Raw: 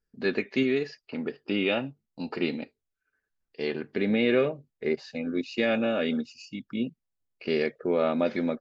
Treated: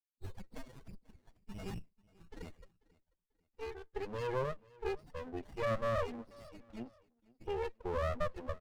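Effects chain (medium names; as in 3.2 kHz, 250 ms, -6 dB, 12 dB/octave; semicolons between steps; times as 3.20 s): expander on every frequency bin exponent 1.5; bass shelf 110 Hz -5.5 dB; compression 6:1, threshold -32 dBFS, peak gain reduction 11.5 dB; high-pass sweep 3.9 kHz -> 670 Hz, 1.34–3.89 s; gain riding within 5 dB 2 s; saturation -28 dBFS, distortion -15 dB; loudest bins only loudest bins 8; distance through air 110 m; feedback delay 490 ms, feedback 34%, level -23.5 dB; sliding maximum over 33 samples; trim +5.5 dB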